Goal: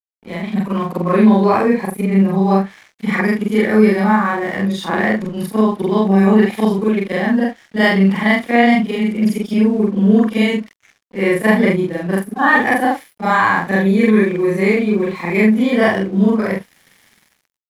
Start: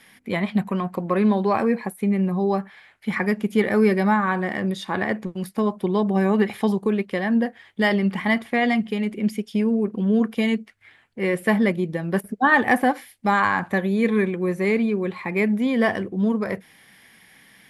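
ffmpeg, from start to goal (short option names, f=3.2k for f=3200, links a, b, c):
-af "afftfilt=real='re':imag='-im':win_size=4096:overlap=0.75,dynaudnorm=f=190:g=7:m=16dB,aeval=exprs='sgn(val(0))*max(abs(val(0))-0.0075,0)':c=same"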